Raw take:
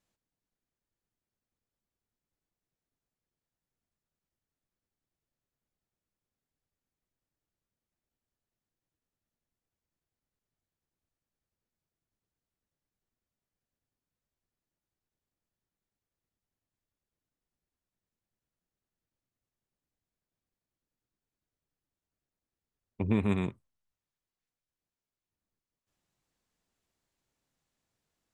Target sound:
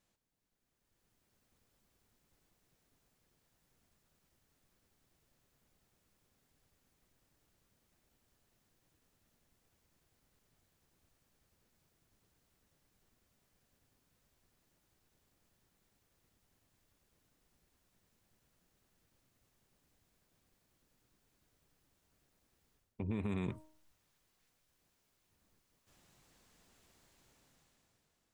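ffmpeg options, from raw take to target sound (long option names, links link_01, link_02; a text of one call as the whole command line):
ffmpeg -i in.wav -af "bandreject=frequency=311.8:width_type=h:width=4,bandreject=frequency=623.6:width_type=h:width=4,bandreject=frequency=935.4:width_type=h:width=4,areverse,acompressor=threshold=-41dB:ratio=8,areverse,alimiter=level_in=19dB:limit=-24dB:level=0:latency=1:release=120,volume=-19dB,dynaudnorm=framelen=270:gausssize=7:maxgain=12.5dB,volume=2.5dB" out.wav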